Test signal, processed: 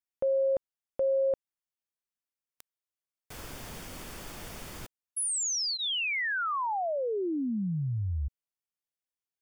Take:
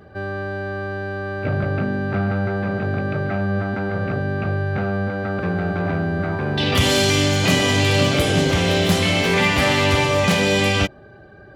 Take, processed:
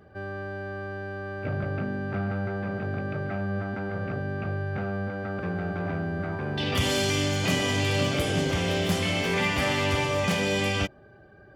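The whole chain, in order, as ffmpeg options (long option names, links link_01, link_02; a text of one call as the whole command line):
ffmpeg -i in.wav -af "bandreject=frequency=4000:width=12,volume=-8dB" out.wav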